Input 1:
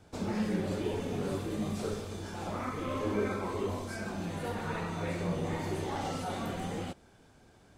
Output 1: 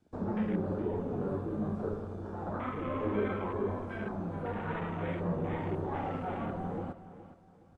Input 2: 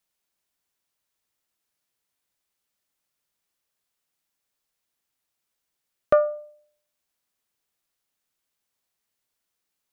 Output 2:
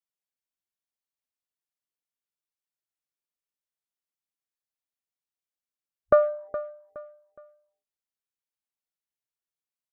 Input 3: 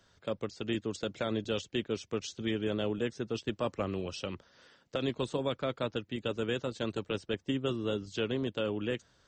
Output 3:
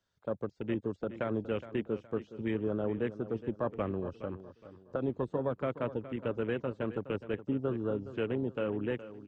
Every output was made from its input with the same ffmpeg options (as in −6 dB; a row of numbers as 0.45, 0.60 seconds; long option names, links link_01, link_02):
-filter_complex "[0:a]acrossover=split=2800[link_01][link_02];[link_02]acompressor=threshold=-60dB:ratio=4:attack=1:release=60[link_03];[link_01][link_03]amix=inputs=2:normalize=0,afwtdn=0.00631,asplit=2[link_04][link_05];[link_05]aecho=0:1:417|834|1251:0.2|0.0678|0.0231[link_06];[link_04][link_06]amix=inputs=2:normalize=0"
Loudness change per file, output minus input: 0.0, −2.0, −0.5 LU